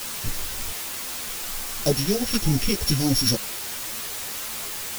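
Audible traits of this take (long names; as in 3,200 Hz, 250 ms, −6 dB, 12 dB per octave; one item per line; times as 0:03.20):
a buzz of ramps at a fixed pitch in blocks of 8 samples
phaser sweep stages 2, 3.3 Hz, lowest notch 610–2,000 Hz
a quantiser's noise floor 6 bits, dither triangular
a shimmering, thickened sound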